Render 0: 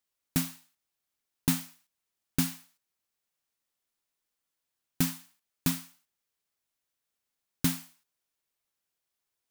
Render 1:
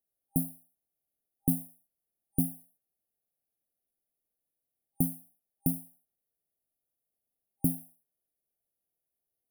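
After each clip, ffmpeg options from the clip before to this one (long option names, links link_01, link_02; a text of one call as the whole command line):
ffmpeg -i in.wav -af "afftfilt=real='re*(1-between(b*sr/4096,800,9300))':imag='im*(1-between(b*sr/4096,800,9300))':win_size=4096:overlap=0.75" out.wav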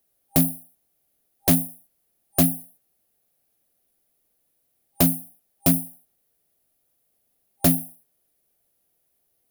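ffmpeg -i in.wav -af "aeval=exprs='0.266*sin(PI/2*3.98*val(0)/0.266)':channel_layout=same" out.wav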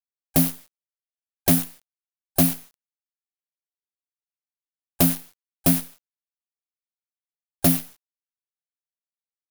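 ffmpeg -i in.wav -af "acrusher=bits=5:dc=4:mix=0:aa=0.000001" out.wav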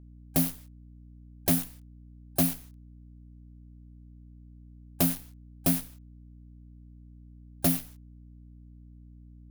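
ffmpeg -i in.wav -af "aeval=exprs='val(0)+0.00794*(sin(2*PI*60*n/s)+sin(2*PI*2*60*n/s)/2+sin(2*PI*3*60*n/s)/3+sin(2*PI*4*60*n/s)/4+sin(2*PI*5*60*n/s)/5)':channel_layout=same,volume=-6.5dB" out.wav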